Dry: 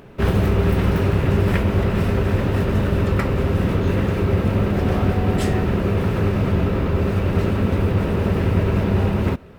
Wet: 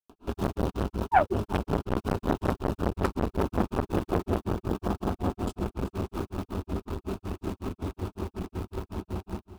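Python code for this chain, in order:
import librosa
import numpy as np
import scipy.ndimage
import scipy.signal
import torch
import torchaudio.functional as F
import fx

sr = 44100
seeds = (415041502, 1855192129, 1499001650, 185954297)

p1 = fx.doppler_pass(x, sr, speed_mps=10, closest_m=5.2, pass_at_s=2.46)
p2 = fx.spec_paint(p1, sr, seeds[0], shape='fall', start_s=1.04, length_s=0.3, low_hz=350.0, high_hz=1500.0, level_db=-17.0)
p3 = fx.fixed_phaser(p2, sr, hz=520.0, stages=6)
p4 = fx.granulator(p3, sr, seeds[1], grain_ms=160.0, per_s=5.4, spray_ms=100.0, spread_st=0)
p5 = fx.quant_dither(p4, sr, seeds[2], bits=8, dither='none')
p6 = p4 + (p5 * librosa.db_to_amplitude(-10.0))
p7 = p6 + 10.0 ** (-16.5 / 20.0) * np.pad(p6, (int(376 * sr / 1000.0), 0))[:len(p6)]
p8 = fx.rider(p7, sr, range_db=5, speed_s=0.5)
p9 = fx.transformer_sat(p8, sr, knee_hz=1000.0)
y = p9 * librosa.db_to_amplitude(8.5)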